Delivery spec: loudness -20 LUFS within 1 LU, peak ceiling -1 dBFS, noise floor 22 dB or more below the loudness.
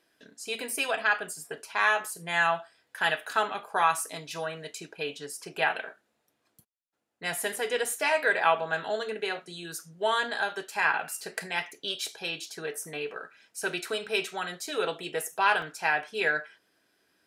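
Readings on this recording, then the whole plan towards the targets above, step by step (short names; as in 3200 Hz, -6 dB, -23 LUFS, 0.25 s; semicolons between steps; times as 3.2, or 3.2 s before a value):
dropouts 3; longest dropout 2.5 ms; loudness -29.5 LUFS; peak -9.5 dBFS; loudness target -20.0 LUFS
-> interpolate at 7.56/14.67/15.62, 2.5 ms; gain +9.5 dB; limiter -1 dBFS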